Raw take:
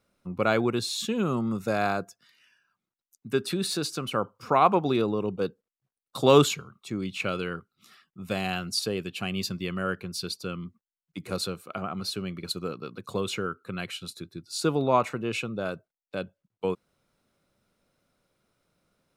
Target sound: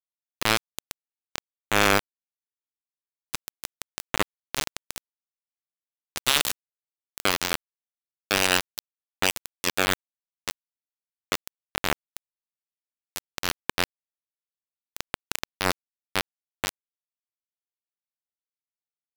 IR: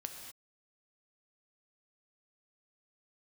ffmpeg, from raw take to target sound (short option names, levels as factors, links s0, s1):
-filter_complex "[0:a]acrossover=split=4600[s0][s1];[s1]acompressor=threshold=0.00891:ratio=4:attack=1:release=60[s2];[s0][s2]amix=inputs=2:normalize=0,afftfilt=real='re*lt(hypot(re,im),0.158)':imag='im*lt(hypot(re,im),0.158)':win_size=1024:overlap=0.75,aeval=exprs='val(0)*gte(abs(val(0)),0.0631)':c=same,alimiter=level_in=6.31:limit=0.891:release=50:level=0:latency=1,volume=0.891"